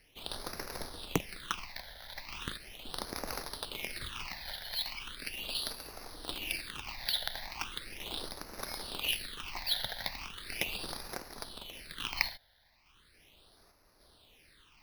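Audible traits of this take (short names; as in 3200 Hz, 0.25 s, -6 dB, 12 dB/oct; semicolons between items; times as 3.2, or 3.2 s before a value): random-step tremolo; aliases and images of a low sample rate 7300 Hz, jitter 0%; phasing stages 8, 0.38 Hz, lowest notch 340–3100 Hz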